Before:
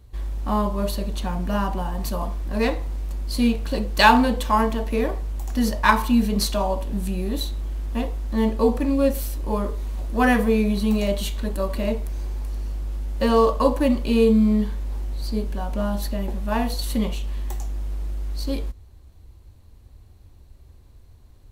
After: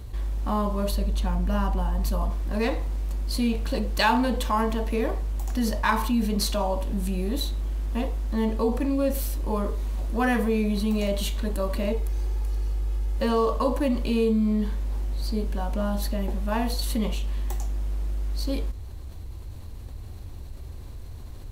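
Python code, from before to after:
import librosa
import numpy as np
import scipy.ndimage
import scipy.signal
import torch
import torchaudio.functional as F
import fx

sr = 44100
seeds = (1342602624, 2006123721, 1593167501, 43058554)

y = fx.low_shelf(x, sr, hz=120.0, db=7.5, at=(0.92, 2.3))
y = fx.comb(y, sr, ms=2.4, depth=0.48, at=(11.92, 13.18))
y = fx.env_flatten(y, sr, amount_pct=50)
y = F.gain(torch.from_numpy(y), -8.5).numpy()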